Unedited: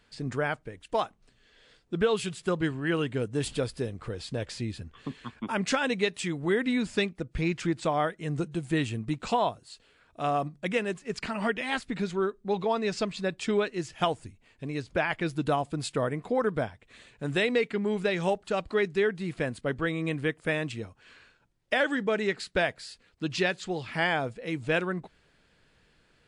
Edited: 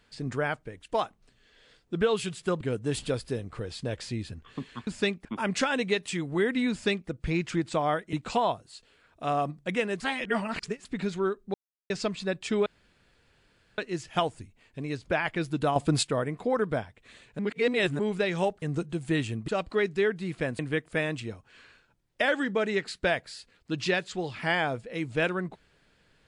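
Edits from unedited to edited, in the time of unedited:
2.61–3.10 s: delete
6.82–7.20 s: copy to 5.36 s
8.24–9.10 s: move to 18.47 s
10.97–11.82 s: reverse
12.51–12.87 s: mute
13.63 s: insert room tone 1.12 s
15.61–15.88 s: gain +8 dB
17.24–17.84 s: reverse
19.58–20.11 s: delete

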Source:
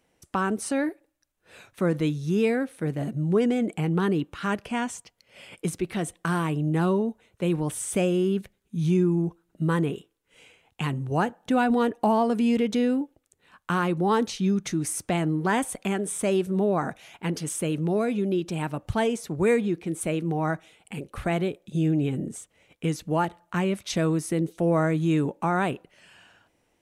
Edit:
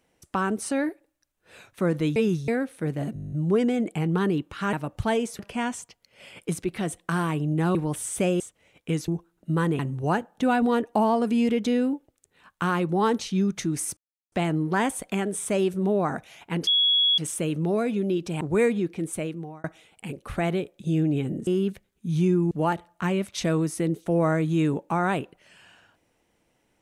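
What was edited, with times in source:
2.16–2.48 s: reverse
3.14 s: stutter 0.02 s, 10 plays
6.91–7.51 s: delete
8.16–9.20 s: swap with 22.35–23.03 s
9.91–10.87 s: delete
15.05 s: insert silence 0.35 s
17.40 s: add tone 3.35 kHz -17.5 dBFS 0.51 s
18.63–19.29 s: move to 4.55 s
19.93–20.52 s: fade out

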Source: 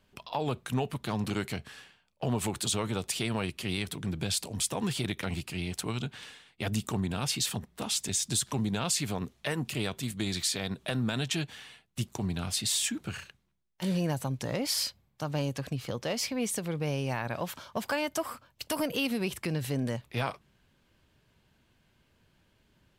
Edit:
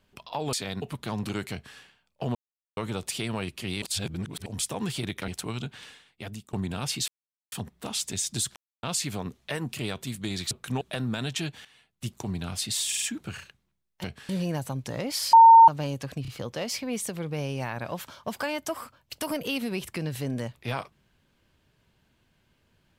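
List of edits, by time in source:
0.53–0.83 s: swap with 10.47–10.76 s
1.53–1.78 s: copy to 13.84 s
2.36–2.78 s: mute
3.83–4.47 s: reverse
5.29–5.68 s: delete
6.32–6.93 s: fade out, to -21.5 dB
7.48 s: insert silence 0.44 s
8.52–8.79 s: mute
11.60–12.10 s: fade in, from -12 dB
12.82 s: stutter 0.05 s, 4 plays
14.88–15.23 s: bleep 911 Hz -8.5 dBFS
15.77 s: stutter 0.03 s, 3 plays

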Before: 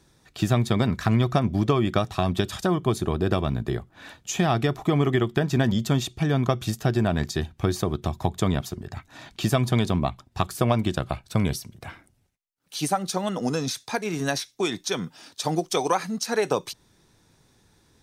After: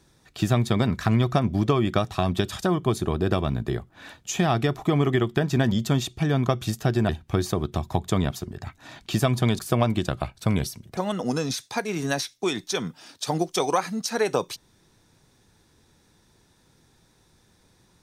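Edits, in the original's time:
7.09–7.39 s: delete
9.89–10.48 s: delete
11.86–13.14 s: delete

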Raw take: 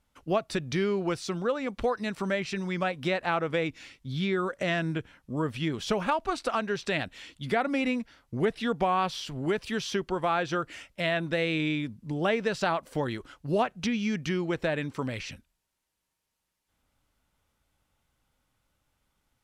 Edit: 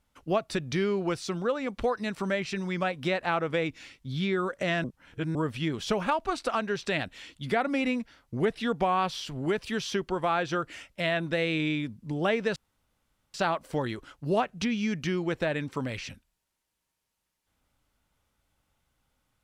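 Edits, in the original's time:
4.84–5.35 s: reverse
12.56 s: insert room tone 0.78 s

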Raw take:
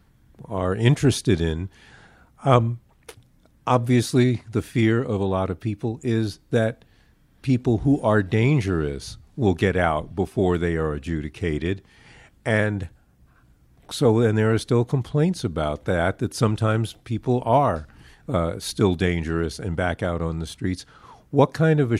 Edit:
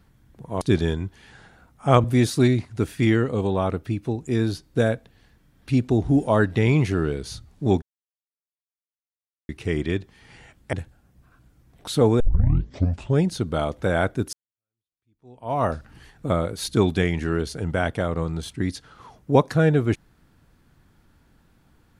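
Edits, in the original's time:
0.61–1.20 s: delete
2.63–3.80 s: delete
9.58–11.25 s: mute
12.49–12.77 s: delete
14.24 s: tape start 1.01 s
16.37–17.68 s: fade in exponential

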